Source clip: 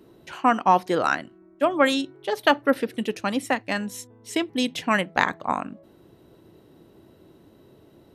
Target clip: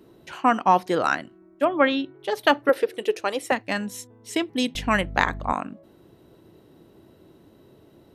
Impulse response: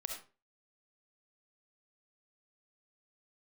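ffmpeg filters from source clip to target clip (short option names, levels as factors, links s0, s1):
-filter_complex "[0:a]asplit=3[s0][s1][s2];[s0]afade=t=out:st=1.64:d=0.02[s3];[s1]lowpass=f=3500:w=0.5412,lowpass=f=3500:w=1.3066,afade=t=in:st=1.64:d=0.02,afade=t=out:st=2.18:d=0.02[s4];[s2]afade=t=in:st=2.18:d=0.02[s5];[s3][s4][s5]amix=inputs=3:normalize=0,asettb=1/sr,asplit=3[s6][s7][s8];[s6]atrim=end=2.694[s9];[s7]atrim=start=2.69:end=3.52,asetpts=PTS-STARTPTS,afade=t=in:d=0.004:c=qsin,afade=t=out:st=0.826:d=0.004:c=qsin,lowshelf=f=300:t=q:w=3:g=-9[s10];[s8]atrim=start=3.516[s11];[s9][s10]acrossfade=d=0.004:c1=hsin:c2=qsin[s12];[s12][s11]acrossfade=d=0.004:c1=qsin:c2=hsin,asettb=1/sr,asplit=3[s13][s14][s15];[s13]atrim=end=4.754[s16];[s14]atrim=start=4.75:end=5.53,asetpts=PTS-STARTPTS,afade=t=in:d=0.004:c=qsin,afade=t=out:st=0.776:d=0.004:c=qsin,aeval=exprs='val(0)+0.0224*(sin(2*PI*50*n/s)+sin(2*PI*2*50*n/s)/2+sin(2*PI*3*50*n/s)/3+sin(2*PI*4*50*n/s)/4+sin(2*PI*5*50*n/s)/5)':c=same[s17];[s15]atrim=start=5.526[s18];[s16][s17]acrossfade=d=0.004:c1=hsin:c2=qsin[s19];[s19][s18]acrossfade=d=0.004:c1=qsin:c2=hsin"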